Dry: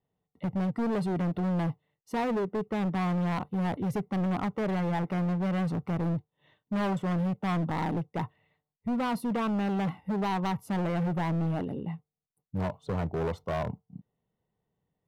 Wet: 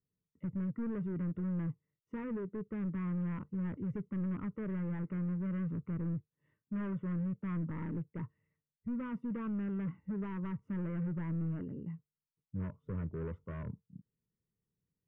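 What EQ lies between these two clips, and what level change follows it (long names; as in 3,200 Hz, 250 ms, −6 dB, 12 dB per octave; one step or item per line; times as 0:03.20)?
head-to-tape spacing loss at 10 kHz 44 dB
phaser with its sweep stopped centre 1,800 Hz, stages 4
−5.0 dB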